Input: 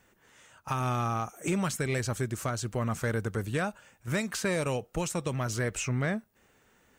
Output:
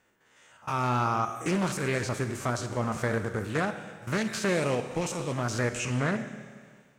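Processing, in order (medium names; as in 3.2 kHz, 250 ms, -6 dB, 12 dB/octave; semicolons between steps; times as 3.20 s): spectrogram pixelated in time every 50 ms; bass shelf 120 Hz -10.5 dB; level rider gain up to 6 dB; treble shelf 9.5 kHz -8.5 dB; Schroeder reverb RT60 1.7 s, combs from 25 ms, DRR 8.5 dB; loudspeaker Doppler distortion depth 0.31 ms; trim -1.5 dB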